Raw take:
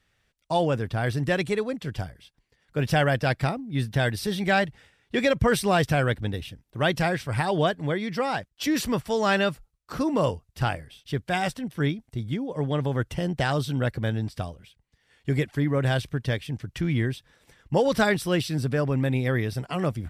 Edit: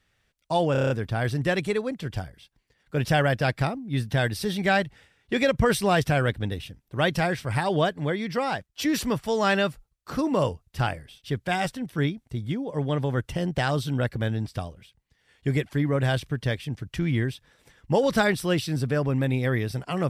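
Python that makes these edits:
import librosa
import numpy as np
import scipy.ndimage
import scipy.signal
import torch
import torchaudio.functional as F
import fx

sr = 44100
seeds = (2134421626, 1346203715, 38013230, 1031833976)

y = fx.edit(x, sr, fx.stutter(start_s=0.72, slice_s=0.03, count=7), tone=tone)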